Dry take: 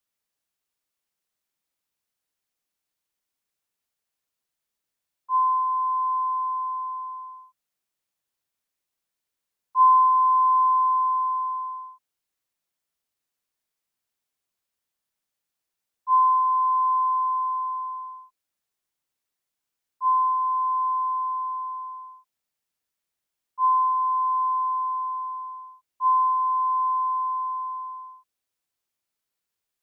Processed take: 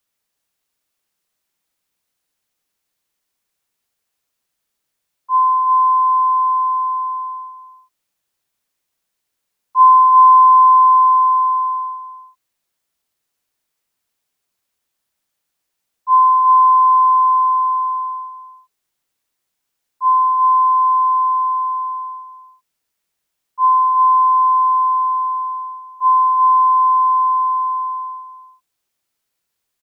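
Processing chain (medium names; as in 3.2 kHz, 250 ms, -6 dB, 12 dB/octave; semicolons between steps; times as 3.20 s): delay 369 ms -7.5 dB; trim +7.5 dB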